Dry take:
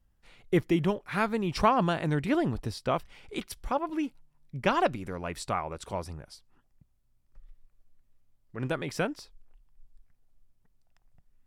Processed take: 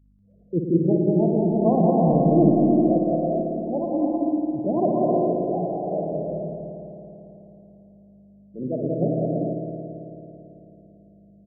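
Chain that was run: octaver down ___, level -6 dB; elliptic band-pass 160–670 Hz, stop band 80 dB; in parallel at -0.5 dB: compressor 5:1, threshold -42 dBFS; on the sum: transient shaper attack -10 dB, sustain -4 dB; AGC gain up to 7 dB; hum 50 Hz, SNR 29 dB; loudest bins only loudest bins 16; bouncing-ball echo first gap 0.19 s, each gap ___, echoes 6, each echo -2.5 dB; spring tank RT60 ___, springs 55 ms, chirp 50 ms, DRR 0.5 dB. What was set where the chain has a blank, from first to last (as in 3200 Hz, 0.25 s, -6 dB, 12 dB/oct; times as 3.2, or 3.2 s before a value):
2 oct, 0.65×, 3.3 s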